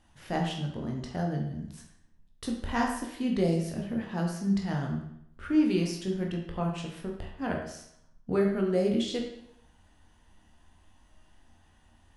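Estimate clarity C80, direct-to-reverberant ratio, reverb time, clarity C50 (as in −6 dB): 7.5 dB, 0.0 dB, 0.75 s, 5.0 dB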